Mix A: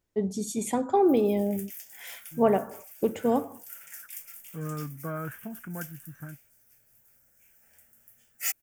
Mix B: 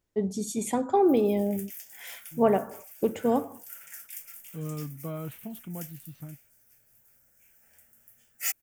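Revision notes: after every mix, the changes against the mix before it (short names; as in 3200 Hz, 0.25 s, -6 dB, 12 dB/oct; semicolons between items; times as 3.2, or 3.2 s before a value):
second voice: remove synth low-pass 1600 Hz, resonance Q 11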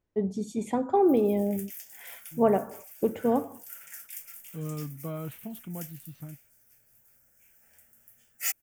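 first voice: add LPF 1800 Hz 6 dB/oct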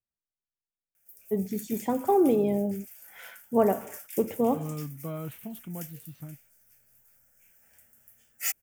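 first voice: entry +1.15 s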